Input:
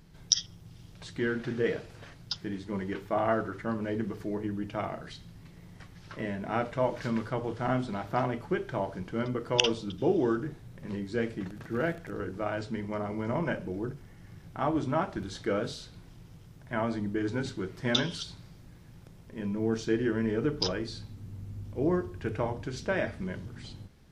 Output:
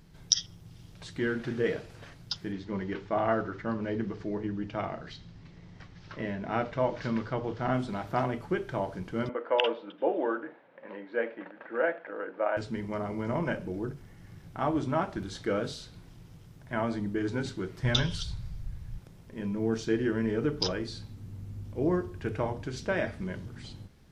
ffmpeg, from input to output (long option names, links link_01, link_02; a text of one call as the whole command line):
ffmpeg -i in.wav -filter_complex "[0:a]asettb=1/sr,asplit=3[link_01][link_02][link_03];[link_01]atrim=end=2.524[link_04];[link_02]atrim=start=2.52:end=7.74,asetpts=PTS-STARTPTS,afade=type=in:duration=0.004:curve=qsin,afade=type=out:start_time=5.216:duration=0.004:curve=qsin,lowpass=frequency=6000:width=0.5412,lowpass=frequency=6000:width=1.3066[link_05];[link_03]atrim=start=7.736[link_06];[link_04][link_05]acrossfade=duration=0.004:curve1=hsin:curve2=qsin[link_07];[link_07][link_06]acrossfade=duration=0.004:curve1=qsin:curve2=hsin,asettb=1/sr,asplit=3[link_08][link_09][link_10];[link_08]atrim=end=9.294[link_11];[link_09]atrim=start=9.29:end=12.57,asetpts=PTS-STARTPTS,afade=type=in:duration=0.004:curve=qsin,afade=type=out:start_time=3.276:duration=0.004:curve=qsin,highpass=frequency=310:width=0.5412,highpass=frequency=310:width=1.3066,equalizer=frequency=390:width_type=q:width=4:gain=-9,equalizer=frequency=550:width_type=q:width=4:gain=10,equalizer=frequency=900:width_type=q:width=4:gain=5,equalizer=frequency=1600:width_type=q:width=4:gain=4,lowpass=frequency=2700:width=0.5412,lowpass=frequency=2700:width=1.3066[link_12];[link_10]atrim=start=12.566[link_13];[link_11][link_12]acrossfade=duration=0.004:curve1=hsin:curve2=qsin[link_14];[link_14][link_13]acrossfade=duration=0.004:curve1=qsin:curve2=hsin,asplit=3[link_15][link_16][link_17];[link_15]afade=type=out:start_time=17.82:duration=0.02[link_18];[link_16]asubboost=boost=10:cutoff=83,afade=type=in:start_time=17.82:duration=0.02,afade=type=out:start_time=18.97:duration=0.02[link_19];[link_17]afade=type=in:start_time=18.97:duration=0.02[link_20];[link_18][link_19][link_20]amix=inputs=3:normalize=0" out.wav